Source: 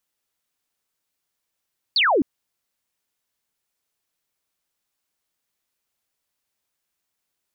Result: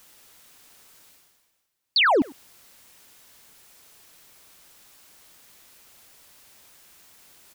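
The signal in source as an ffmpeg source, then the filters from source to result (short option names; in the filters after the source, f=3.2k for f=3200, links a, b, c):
-f lavfi -i "aevalsrc='0.178*clip(t/0.002,0,1)*clip((0.26-t)/0.002,0,1)*sin(2*PI*4800*0.26/log(240/4800)*(exp(log(240/4800)*t/0.26)-1))':d=0.26:s=44100"
-filter_complex "[0:a]areverse,acompressor=mode=upward:threshold=-32dB:ratio=2.5,areverse,asplit=2[a][b];[b]adelay=100,highpass=300,lowpass=3.4k,asoftclip=type=hard:threshold=-23.5dB,volume=-17dB[c];[a][c]amix=inputs=2:normalize=0"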